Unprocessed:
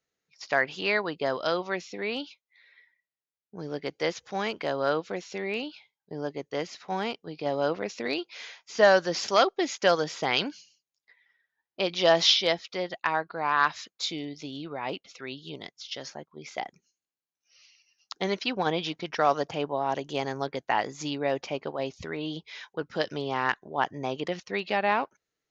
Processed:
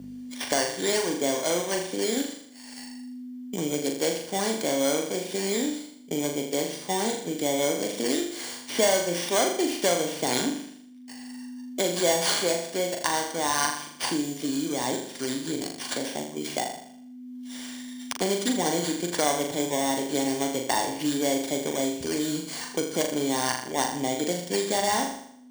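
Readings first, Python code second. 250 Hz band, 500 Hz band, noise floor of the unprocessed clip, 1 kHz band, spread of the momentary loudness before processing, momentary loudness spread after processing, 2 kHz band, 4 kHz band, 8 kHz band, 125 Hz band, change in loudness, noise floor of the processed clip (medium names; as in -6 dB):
+7.0 dB, +1.0 dB, under -85 dBFS, -1.0 dB, 15 LU, 14 LU, -2.5 dB, +0.5 dB, no reading, +1.5 dB, +1.5 dB, -45 dBFS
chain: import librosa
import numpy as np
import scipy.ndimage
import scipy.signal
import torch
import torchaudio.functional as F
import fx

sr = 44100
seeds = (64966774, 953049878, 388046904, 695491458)

p1 = fx.bit_reversed(x, sr, seeds[0], block=16)
p2 = fx.low_shelf(p1, sr, hz=90.0, db=11.5)
p3 = fx.add_hum(p2, sr, base_hz=50, snr_db=24)
p4 = fx.peak_eq(p3, sr, hz=270.0, db=6.5, octaves=0.57)
p5 = fx.hum_notches(p4, sr, base_hz=50, count=4)
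p6 = np.repeat(p5[::3], 3)[:len(p5)]
p7 = fx.notch_comb(p6, sr, f0_hz=1300.0)
p8 = p7 + fx.room_flutter(p7, sr, wall_m=6.9, rt60_s=0.53, dry=0)
y = fx.band_squash(p8, sr, depth_pct=70)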